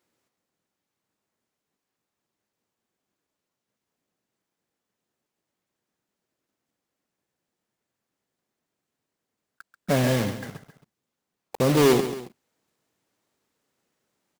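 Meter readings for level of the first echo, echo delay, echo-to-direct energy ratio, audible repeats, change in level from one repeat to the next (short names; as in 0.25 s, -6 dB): -11.5 dB, 0.136 s, -10.5 dB, 2, -7.0 dB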